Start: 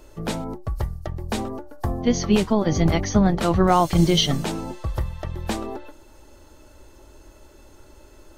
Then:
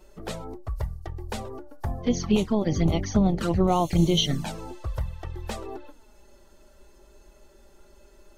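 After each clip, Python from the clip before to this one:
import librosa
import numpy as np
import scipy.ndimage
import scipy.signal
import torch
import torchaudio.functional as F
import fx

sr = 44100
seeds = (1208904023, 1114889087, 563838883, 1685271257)

y = fx.env_flanger(x, sr, rest_ms=5.6, full_db=-14.5)
y = y * librosa.db_to_amplitude(-3.0)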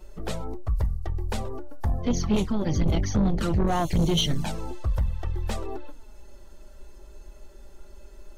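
y = fx.low_shelf(x, sr, hz=76.0, db=10.5)
y = 10.0 ** (-18.5 / 20.0) * np.tanh(y / 10.0 ** (-18.5 / 20.0))
y = y * librosa.db_to_amplitude(1.5)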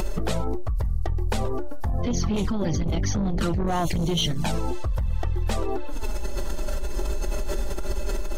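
y = fx.env_flatten(x, sr, amount_pct=100)
y = y * librosa.db_to_amplitude(-4.0)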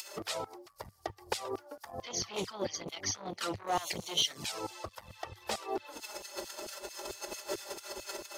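y = fx.filter_lfo_highpass(x, sr, shape='saw_down', hz=4.5, low_hz=220.0, high_hz=3300.0, q=0.74)
y = fx.graphic_eq_31(y, sr, hz=(100, 160, 250, 1600, 5000), db=(7, -6, -5, -3, 5))
y = y * librosa.db_to_amplitude(-3.0)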